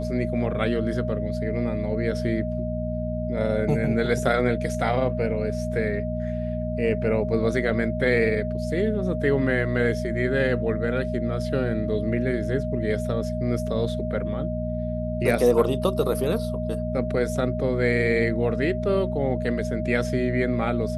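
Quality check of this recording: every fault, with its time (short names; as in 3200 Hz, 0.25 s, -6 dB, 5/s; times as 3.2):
hum 60 Hz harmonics 4 -29 dBFS
tone 620 Hz -30 dBFS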